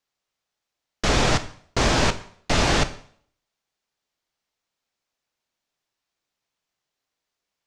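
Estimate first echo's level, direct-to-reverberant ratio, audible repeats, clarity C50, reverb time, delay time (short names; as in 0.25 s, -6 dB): none, 10.0 dB, none, 14.5 dB, 0.60 s, none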